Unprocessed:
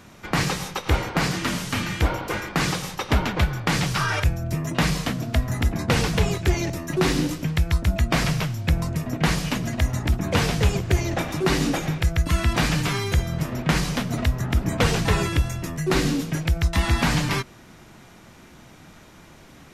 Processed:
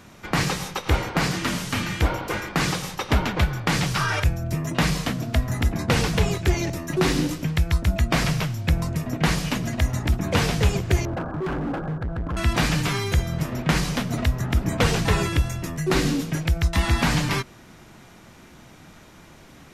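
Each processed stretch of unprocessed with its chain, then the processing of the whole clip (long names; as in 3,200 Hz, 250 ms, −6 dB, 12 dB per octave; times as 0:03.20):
0:11.05–0:12.37: linear-phase brick-wall low-pass 1,700 Hz + hard clipping −24.5 dBFS
whole clip: no processing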